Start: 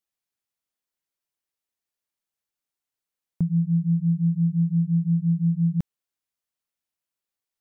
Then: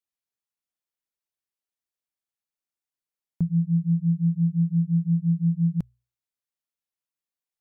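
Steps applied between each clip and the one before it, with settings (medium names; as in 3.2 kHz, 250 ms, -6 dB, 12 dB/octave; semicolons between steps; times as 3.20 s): hum notches 60/120 Hz; upward expansion 1.5:1, over -31 dBFS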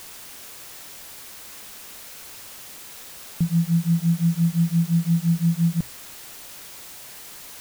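added noise white -43 dBFS; trim +2 dB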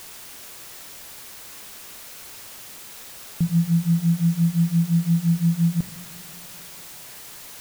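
reverberation RT60 3.0 s, pre-delay 4 ms, DRR 12 dB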